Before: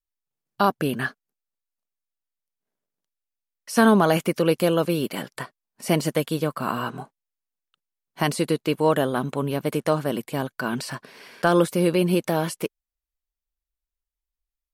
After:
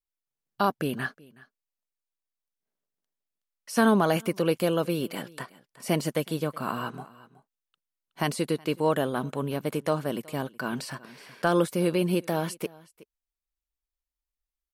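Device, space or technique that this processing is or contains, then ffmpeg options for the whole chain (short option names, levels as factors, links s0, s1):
ducked delay: -filter_complex "[0:a]asplit=3[s0][s1][s2];[s1]adelay=371,volume=0.473[s3];[s2]apad=whole_len=666200[s4];[s3][s4]sidechaincompress=threshold=0.0178:ratio=12:attack=16:release=1470[s5];[s0][s5]amix=inputs=2:normalize=0,volume=0.596"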